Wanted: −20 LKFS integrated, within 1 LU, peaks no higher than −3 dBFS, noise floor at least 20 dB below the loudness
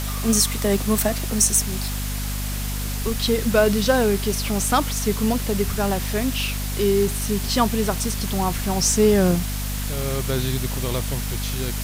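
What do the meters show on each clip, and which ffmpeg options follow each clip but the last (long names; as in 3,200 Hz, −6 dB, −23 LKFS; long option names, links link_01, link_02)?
mains hum 50 Hz; hum harmonics up to 250 Hz; level of the hum −25 dBFS; background noise floor −27 dBFS; target noise floor −42 dBFS; integrated loudness −21.5 LKFS; sample peak −5.0 dBFS; target loudness −20.0 LKFS
→ -af "bandreject=frequency=50:width_type=h:width=6,bandreject=frequency=100:width_type=h:width=6,bandreject=frequency=150:width_type=h:width=6,bandreject=frequency=200:width_type=h:width=6,bandreject=frequency=250:width_type=h:width=6"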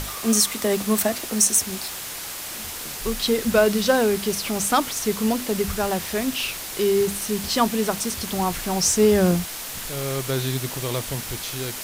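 mains hum none found; background noise floor −33 dBFS; target noise floor −43 dBFS
→ -af "afftdn=noise_reduction=10:noise_floor=-33"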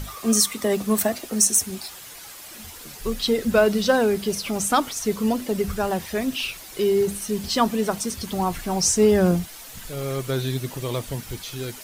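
background noise floor −41 dBFS; target noise floor −43 dBFS
→ -af "afftdn=noise_reduction=6:noise_floor=-41"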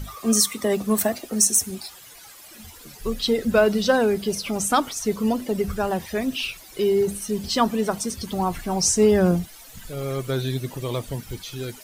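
background noise floor −45 dBFS; integrated loudness −22.5 LKFS; sample peak −6.0 dBFS; target loudness −20.0 LKFS
→ -af "volume=2.5dB"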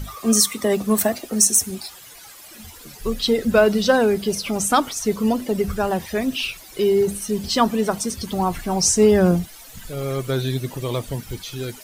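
integrated loudness −20.0 LKFS; sample peak −3.5 dBFS; background noise floor −43 dBFS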